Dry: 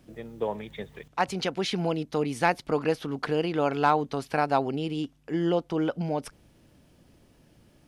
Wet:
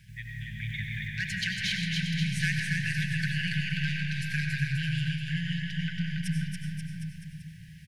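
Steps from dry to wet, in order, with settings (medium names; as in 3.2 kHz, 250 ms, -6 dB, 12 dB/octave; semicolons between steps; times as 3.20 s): graphic EQ 125/250/500/2000 Hz +7/-5/-11/+8 dB; in parallel at +1 dB: compression, threshold -36 dBFS, peak gain reduction 18.5 dB; on the sum: saturation -16 dBFS, distortion -14 dB; brick-wall FIR band-stop 200–1500 Hz; on a send: bouncing-ball echo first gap 280 ms, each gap 0.9×, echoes 5; on the sum: algorithmic reverb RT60 2.6 s, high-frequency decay 0.3×, pre-delay 55 ms, DRR 0.5 dB; trim -4 dB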